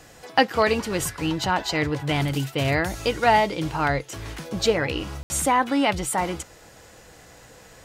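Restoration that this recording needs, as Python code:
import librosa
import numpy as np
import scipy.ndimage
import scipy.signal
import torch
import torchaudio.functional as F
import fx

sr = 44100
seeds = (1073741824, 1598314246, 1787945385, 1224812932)

y = fx.fix_ambience(x, sr, seeds[0], print_start_s=6.45, print_end_s=6.95, start_s=5.23, end_s=5.3)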